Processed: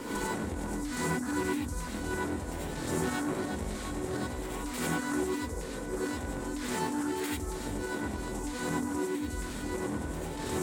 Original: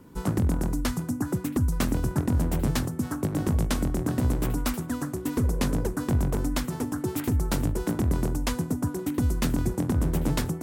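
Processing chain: graphic EQ 125/250/500/1000/2000/4000/8000 Hz -10/+4/+9/+5/+10/+9/+12 dB; compressor with a negative ratio -35 dBFS, ratio -1; hard clipper -26 dBFS, distortion -14 dB; gated-style reverb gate 120 ms rising, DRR -4.5 dB; trim -5 dB

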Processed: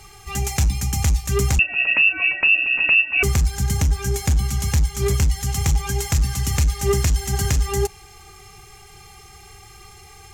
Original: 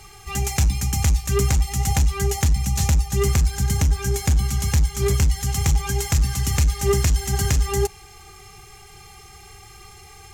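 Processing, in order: 1.59–3.23 s: frequency inversion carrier 2.7 kHz

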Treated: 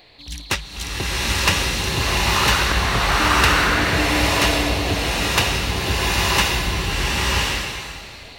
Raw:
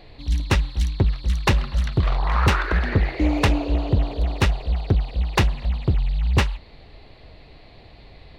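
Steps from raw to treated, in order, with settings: tilt EQ +3 dB/octave; swelling reverb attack 1040 ms, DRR -8 dB; trim -1 dB

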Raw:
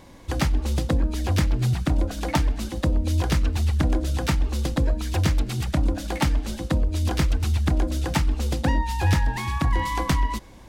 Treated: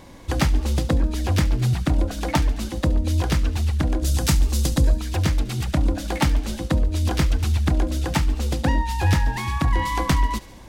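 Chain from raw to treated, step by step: 4.02–4.98 s: tone controls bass +5 dB, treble +12 dB; gain riding within 3 dB 2 s; on a send: feedback echo behind a high-pass 71 ms, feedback 64%, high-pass 2.4 kHz, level -16 dB; on the sum: trim +1 dB

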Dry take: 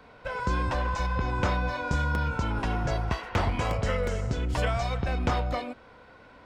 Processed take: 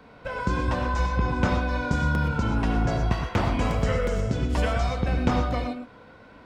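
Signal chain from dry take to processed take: peaking EQ 220 Hz +6 dB 1.6 oct; gated-style reverb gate 140 ms rising, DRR 5.5 dB

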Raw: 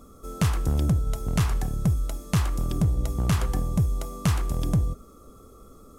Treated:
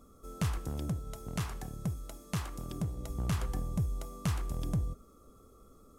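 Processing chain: 0.58–3.10 s: bass shelf 82 Hz -10.5 dB; trim -9 dB

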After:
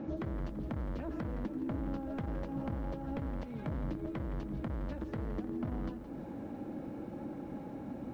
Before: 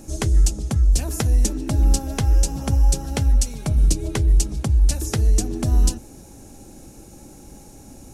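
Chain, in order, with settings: in parallel at -4 dB: Schmitt trigger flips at -17 dBFS; on the sum: cabinet simulation 320–2900 Hz, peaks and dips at 400 Hz -9 dB, 750 Hz -5 dB, 2.6 kHz -6 dB; compression 5:1, threshold -44 dBFS, peak gain reduction 18.5 dB; saturation -38 dBFS, distortion -13 dB; tilt EQ -3.5 dB/octave; bit-crushed delay 168 ms, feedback 55%, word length 11-bit, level -13 dB; trim +4 dB

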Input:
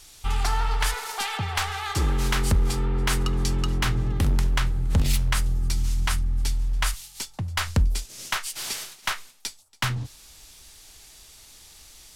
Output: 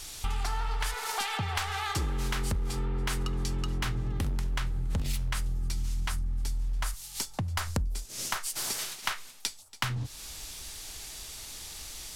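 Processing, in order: 6.10–8.79 s: dynamic bell 2.8 kHz, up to -7 dB, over -44 dBFS, Q 0.87; compression 4:1, threshold -37 dBFS, peak gain reduction 17.5 dB; trim +6.5 dB

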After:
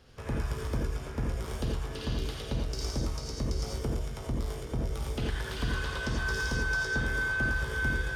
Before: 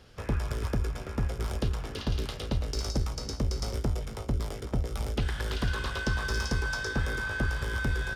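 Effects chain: gated-style reverb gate 110 ms rising, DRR -0.5 dB; trim -4.5 dB

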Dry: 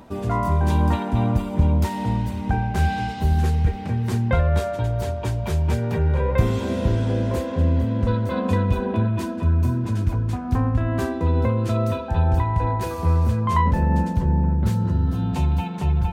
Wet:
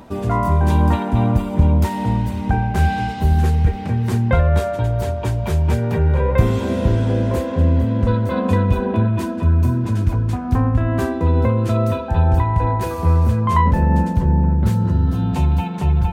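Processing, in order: dynamic bell 4.9 kHz, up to -3 dB, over -45 dBFS, Q 0.77; trim +4 dB

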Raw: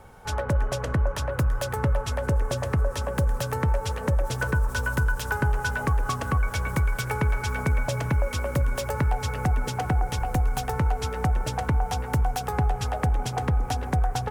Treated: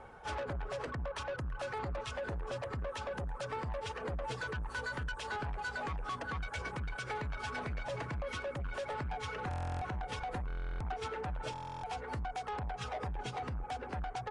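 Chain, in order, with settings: reverb removal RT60 1.8 s; tone controls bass -9 dB, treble -14 dB; peak limiter -22.5 dBFS, peak gain reduction 7.5 dB; saturation -35 dBFS, distortion -9 dB; hum 60 Hz, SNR 28 dB; buffer glitch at 9.49/10.48/11.51 s, samples 1024, times 13; AAC 32 kbps 22.05 kHz

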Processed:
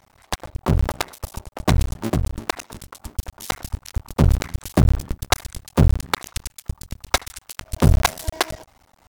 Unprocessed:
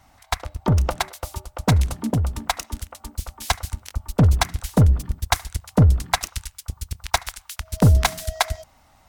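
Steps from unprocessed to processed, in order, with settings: cycle switcher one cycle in 2, muted; trim +2.5 dB

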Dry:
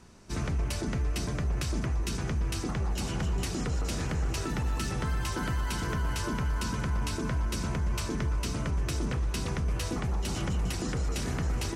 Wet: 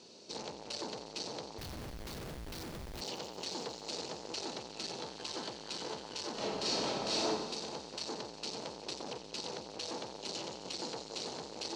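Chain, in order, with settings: high-order bell 1.3 kHz -13 dB; saturation -39 dBFS, distortion -7 dB; cabinet simulation 360–6900 Hz, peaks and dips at 480 Hz +4 dB, 880 Hz +8 dB, 4.3 kHz +10 dB; 1.58–3.01 s: Schmitt trigger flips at -47 dBFS; 6.34–7.27 s: reverb throw, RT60 0.97 s, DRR -8.5 dB; feedback echo behind a high-pass 90 ms, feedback 82%, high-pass 2.1 kHz, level -12 dB; trim +3.5 dB

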